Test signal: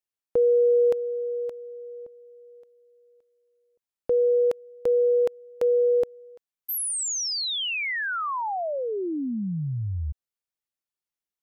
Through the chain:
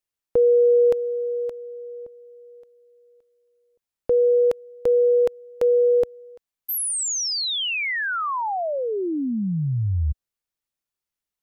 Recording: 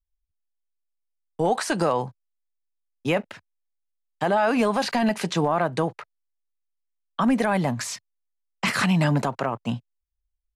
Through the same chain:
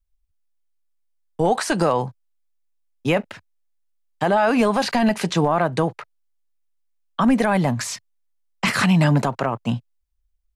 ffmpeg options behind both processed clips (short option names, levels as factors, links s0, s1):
-af "lowshelf=f=88:g=7.5,volume=1.41"